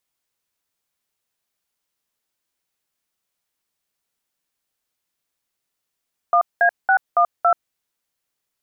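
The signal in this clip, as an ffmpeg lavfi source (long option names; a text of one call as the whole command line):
ffmpeg -f lavfi -i "aevalsrc='0.188*clip(min(mod(t,0.279),0.083-mod(t,0.279))/0.002,0,1)*(eq(floor(t/0.279),0)*(sin(2*PI*697*mod(t,0.279))+sin(2*PI*1209*mod(t,0.279)))+eq(floor(t/0.279),1)*(sin(2*PI*697*mod(t,0.279))+sin(2*PI*1633*mod(t,0.279)))+eq(floor(t/0.279),2)*(sin(2*PI*770*mod(t,0.279))+sin(2*PI*1477*mod(t,0.279)))+eq(floor(t/0.279),3)*(sin(2*PI*697*mod(t,0.279))+sin(2*PI*1209*mod(t,0.279)))+eq(floor(t/0.279),4)*(sin(2*PI*697*mod(t,0.279))+sin(2*PI*1336*mod(t,0.279))))':duration=1.395:sample_rate=44100" out.wav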